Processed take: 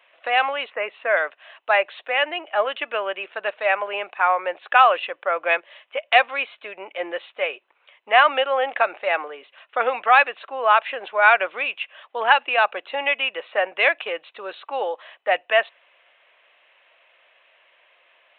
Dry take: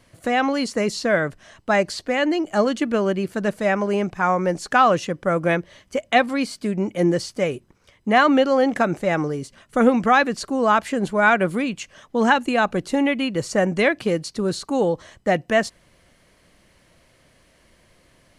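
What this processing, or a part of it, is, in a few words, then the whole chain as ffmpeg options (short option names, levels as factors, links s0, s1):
musical greeting card: -filter_complex "[0:a]asettb=1/sr,asplit=3[s0][s1][s2];[s0]atrim=end=0.704[s3];[s1]atrim=start=0.7:end=1.17,asetpts=PTS-STARTPTS,afade=t=in:d=0.004:c=qsin,afade=t=out:st=0.466:d=0.004:c=qsin,lowpass=f=2500:w=0.5412,lowpass=f=2500:w=1.3066[s4];[s2]atrim=start=1.166[s5];[s3][s4]acrossfade=d=0.004:c1=hsin:c2=qsin[s6];[s6][s5]acrossfade=d=0.004:c1=qsin:c2=hsin,aresample=8000,aresample=44100,highpass=f=610:w=0.5412,highpass=f=610:w=1.3066,equalizer=f=2600:t=o:w=0.23:g=9,volume=1.26"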